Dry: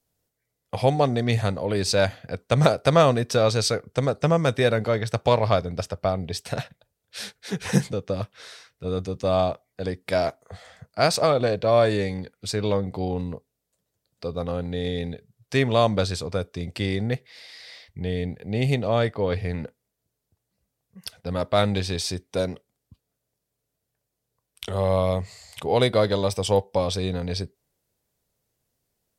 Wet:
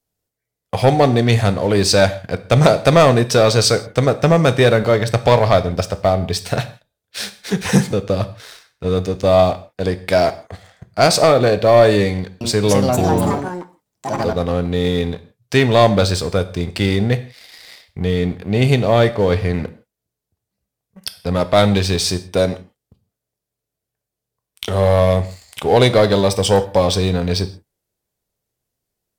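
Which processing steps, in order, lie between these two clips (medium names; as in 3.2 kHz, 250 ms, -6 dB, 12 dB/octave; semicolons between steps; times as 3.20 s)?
waveshaping leveller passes 2; 12.11–14.53 s: ever faster or slower copies 298 ms, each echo +4 st, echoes 3; gated-style reverb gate 190 ms falling, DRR 11 dB; trim +1.5 dB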